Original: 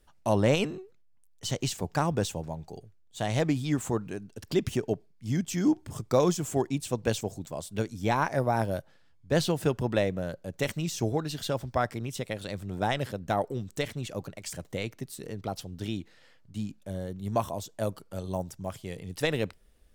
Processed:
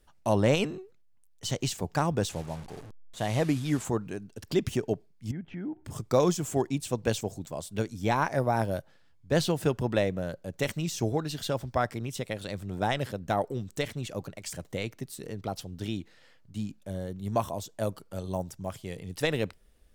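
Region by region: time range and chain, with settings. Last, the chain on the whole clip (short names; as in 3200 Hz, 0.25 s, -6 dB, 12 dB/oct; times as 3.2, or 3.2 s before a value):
2.29–3.85 delta modulation 64 kbps, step -39 dBFS + sample gate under -51 dBFS + mismatched tape noise reduction decoder only
5.31–5.85 LPF 2200 Hz 24 dB/oct + notch 1100 Hz, Q 6.4 + compressor 2.5:1, threshold -38 dBFS
whole clip: dry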